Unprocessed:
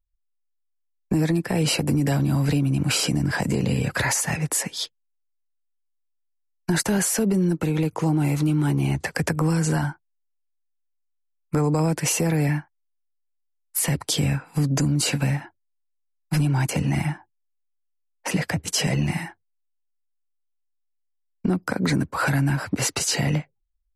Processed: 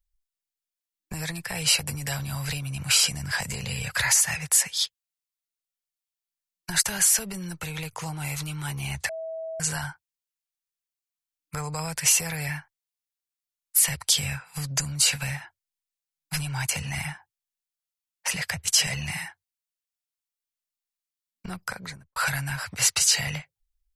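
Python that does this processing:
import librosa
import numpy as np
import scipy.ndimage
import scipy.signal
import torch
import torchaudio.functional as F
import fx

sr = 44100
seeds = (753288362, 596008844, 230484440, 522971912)

y = fx.studio_fade_out(x, sr, start_s=21.59, length_s=0.57)
y = fx.edit(y, sr, fx.bleep(start_s=9.09, length_s=0.51, hz=648.0, db=-22.0), tone=tone)
y = fx.tone_stack(y, sr, knobs='10-0-10')
y = y * 10.0 ** (5.0 / 20.0)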